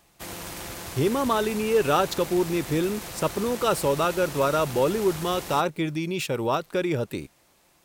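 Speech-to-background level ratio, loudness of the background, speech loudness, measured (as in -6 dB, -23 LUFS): 10.5 dB, -36.0 LUFS, -25.5 LUFS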